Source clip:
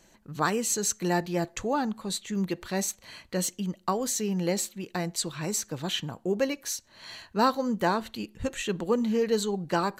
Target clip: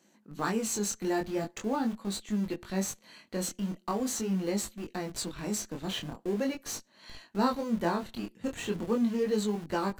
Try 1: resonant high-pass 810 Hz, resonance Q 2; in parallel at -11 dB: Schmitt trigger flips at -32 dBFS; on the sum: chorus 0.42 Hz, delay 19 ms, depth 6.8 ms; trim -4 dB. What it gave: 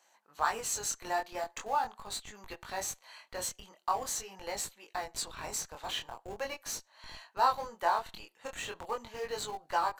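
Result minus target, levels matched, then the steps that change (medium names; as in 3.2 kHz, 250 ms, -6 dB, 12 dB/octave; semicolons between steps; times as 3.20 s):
250 Hz band -19.0 dB
change: resonant high-pass 220 Hz, resonance Q 2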